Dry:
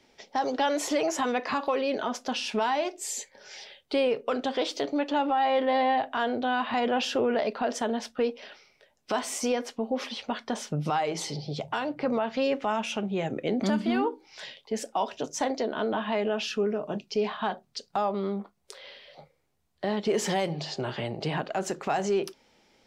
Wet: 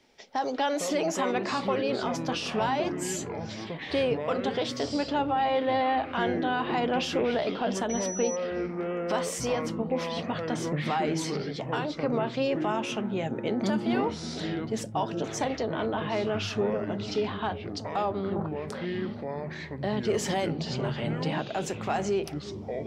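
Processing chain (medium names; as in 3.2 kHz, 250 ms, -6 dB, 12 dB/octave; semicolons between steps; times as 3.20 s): 18.36–18.85 s: high-order bell 850 Hz +14 dB 2.4 oct; feedback echo behind a low-pass 371 ms, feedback 66%, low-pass 480 Hz, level -13 dB; ever faster or slower copies 280 ms, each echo -7 st, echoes 3, each echo -6 dB; 7.89–8.35 s: whistle 5.9 kHz -33 dBFS; trim -1.5 dB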